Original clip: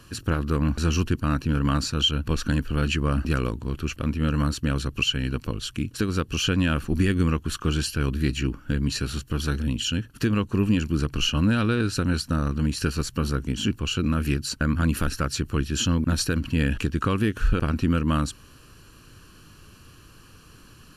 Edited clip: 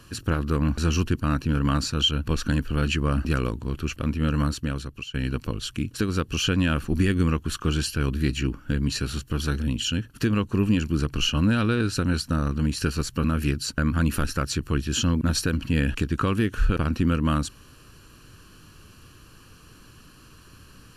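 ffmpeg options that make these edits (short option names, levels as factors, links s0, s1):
-filter_complex "[0:a]asplit=3[s0][s1][s2];[s0]atrim=end=5.14,asetpts=PTS-STARTPTS,afade=t=out:st=4.43:d=0.71:silence=0.11885[s3];[s1]atrim=start=5.14:end=13.242,asetpts=PTS-STARTPTS,afade=t=in:d=0.004:c=hsin:silence=0.11885[s4];[s2]atrim=start=14.068[s5];[s3][s4]concat=n=2:v=0:a=1[s6];[s6][s5]acrossfade=d=0.004:c1=hsin:c2=hsin"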